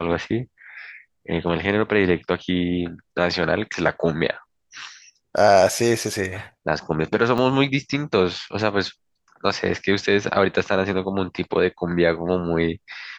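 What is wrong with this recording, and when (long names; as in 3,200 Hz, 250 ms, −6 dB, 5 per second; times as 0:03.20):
0:07.38–0:07.39: drop-out 5.3 ms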